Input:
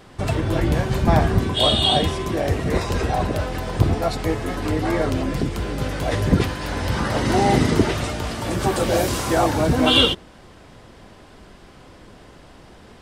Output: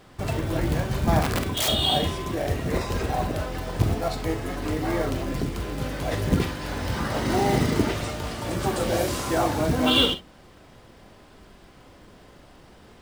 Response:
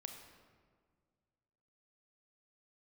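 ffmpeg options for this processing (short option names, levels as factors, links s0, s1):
-filter_complex "[0:a]acrusher=bits=5:mode=log:mix=0:aa=0.000001,asplit=3[s0][s1][s2];[s0]afade=t=out:st=1.21:d=0.02[s3];[s1]aeval=exprs='(mod(5.01*val(0)+1,2)-1)/5.01':c=same,afade=t=in:st=1.21:d=0.02,afade=t=out:st=1.67:d=0.02[s4];[s2]afade=t=in:st=1.67:d=0.02[s5];[s3][s4][s5]amix=inputs=3:normalize=0[s6];[1:a]atrim=start_sample=2205,atrim=end_sample=3087[s7];[s6][s7]afir=irnorm=-1:irlink=0"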